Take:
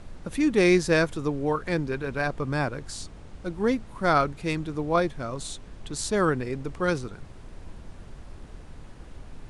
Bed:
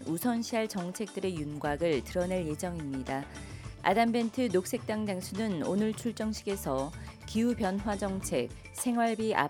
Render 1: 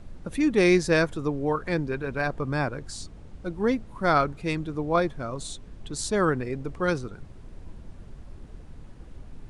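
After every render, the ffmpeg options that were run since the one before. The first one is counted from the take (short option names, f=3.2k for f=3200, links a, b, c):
-af "afftdn=nr=6:nf=-46"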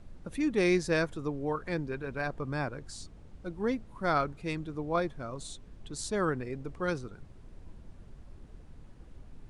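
-af "volume=-6.5dB"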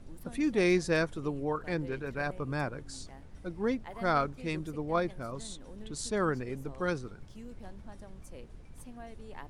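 -filter_complex "[1:a]volume=-19.5dB[a];[0:a][a]amix=inputs=2:normalize=0"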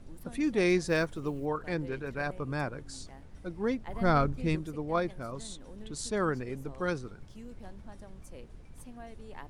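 -filter_complex "[0:a]asettb=1/sr,asplit=3[a][b][c];[a]atrim=end=0.874[d];[b]atrim=start=0.87:end=1.46,asetpts=PTS-STARTPTS,afade=t=in:d=0.004:c=qsin,afade=t=out:st=0.586:d=0.004:c=qsin,acrusher=bits=9:mode=log:mix=0:aa=0.000001[e];[c]atrim=start=1.456[f];[d][e]acrossfade=d=0.004:c1=hsin:c2=qsin[g];[g][f]acrossfade=d=0.004:c1=qsin:c2=hsin,asettb=1/sr,asplit=3[h][i][j];[h]atrim=end=3.874[k];[i]atrim=start=3.87:end=4.56,asetpts=PTS-STARTPTS,afade=t=in:d=0.004:c=qsin,afade=t=out:st=0.686:d=0.004:c=qsin,lowshelf=f=270:g=11.5[l];[j]atrim=start=4.556[m];[k][l]acrossfade=d=0.004:c1=hsin:c2=qsin[n];[n][m]acrossfade=d=0.004:c1=qsin:c2=hsin"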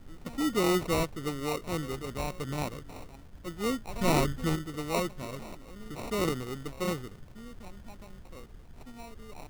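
-af "acrusher=samples=27:mix=1:aa=0.000001"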